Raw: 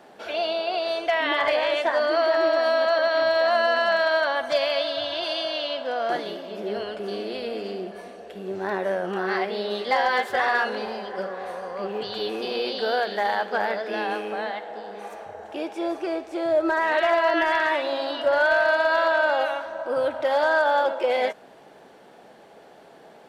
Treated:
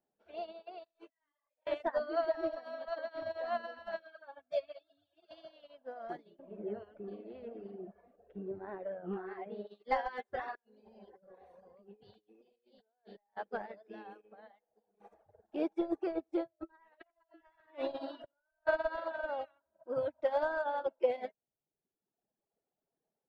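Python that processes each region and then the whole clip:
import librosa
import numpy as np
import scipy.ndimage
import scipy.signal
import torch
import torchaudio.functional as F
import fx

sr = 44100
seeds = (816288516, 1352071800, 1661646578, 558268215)

y = fx.chain(x, sr, fx.highpass(hz=360.0, slope=6),
    fx.over_compress(threshold_db=-32.0, ratio=-0.5),
    fx.detune_double(cents=38), at=(0.84, 1.67))
y = fx.chain(y, sr, fx.notch_comb(f0_hz=1000.0),
    fx.ensemble(), at=(3.99, 5.31))
y = fx.chain(y, sr, fx.lowpass(hz=2200.0, slope=12),
    fx.env_flatten(amount_pct=50), at=(6.39, 9.67))
y = fx.chain(y, sr, fx.peak_eq(hz=1300.0, db=-7.5, octaves=0.63),
    fx.over_compress(threshold_db=-34.0, ratio=-1.0), at=(10.55, 13.37))
y = fx.chain(y, sr, fx.over_compress(threshold_db=-27.0, ratio=-0.5),
    fx.echo_single(ms=89, db=-12.5), at=(15.0, 18.67))
y = fx.dereverb_blind(y, sr, rt60_s=1.8)
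y = fx.tilt_eq(y, sr, slope=-3.5)
y = fx.upward_expand(y, sr, threshold_db=-40.0, expansion=2.5)
y = F.gain(torch.from_numpy(y), -6.5).numpy()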